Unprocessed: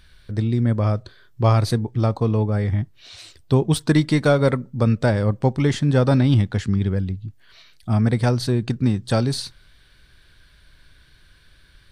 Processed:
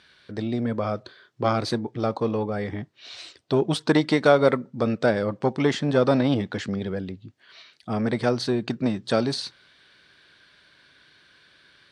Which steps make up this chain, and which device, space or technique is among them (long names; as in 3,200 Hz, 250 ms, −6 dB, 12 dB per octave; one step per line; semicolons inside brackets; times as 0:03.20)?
public-address speaker with an overloaded transformer (saturating transformer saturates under 290 Hz; band-pass filter 250–5,700 Hz)
level +2 dB